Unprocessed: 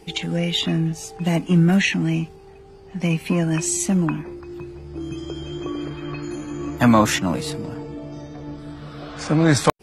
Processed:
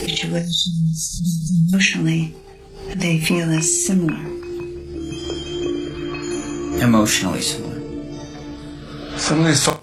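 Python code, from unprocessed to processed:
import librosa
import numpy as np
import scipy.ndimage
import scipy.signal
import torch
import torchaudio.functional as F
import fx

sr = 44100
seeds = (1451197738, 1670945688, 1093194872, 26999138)

p1 = fx.hum_notches(x, sr, base_hz=50, count=5)
p2 = fx.rotary_switch(p1, sr, hz=7.5, then_hz=1.0, switch_at_s=2.48)
p3 = fx.high_shelf(p2, sr, hz=2800.0, db=9.0)
p4 = fx.rider(p3, sr, range_db=3, speed_s=0.5)
p5 = p3 + (p4 * librosa.db_to_amplitude(3.0))
p6 = fx.spec_erase(p5, sr, start_s=0.39, length_s=1.34, low_hz=210.0, high_hz=3500.0)
p7 = p6 + fx.room_flutter(p6, sr, wall_m=5.4, rt60_s=0.22, dry=0)
p8 = fx.pre_swell(p7, sr, db_per_s=70.0)
y = p8 * librosa.db_to_amplitude(-5.0)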